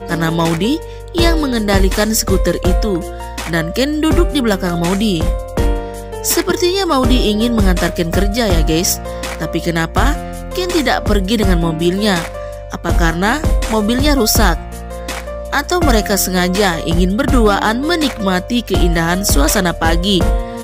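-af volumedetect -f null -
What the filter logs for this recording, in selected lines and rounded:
mean_volume: -14.5 dB
max_volume: -1.8 dB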